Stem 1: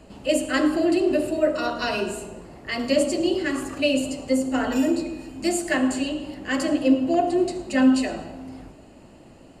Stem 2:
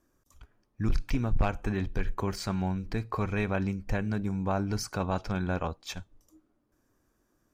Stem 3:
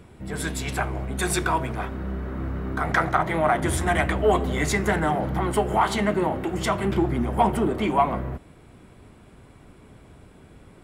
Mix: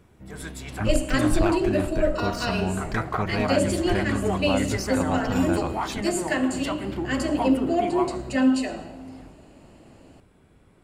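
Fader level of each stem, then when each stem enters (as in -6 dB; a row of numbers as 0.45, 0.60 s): -2.5, +2.0, -8.0 dB; 0.60, 0.00, 0.00 s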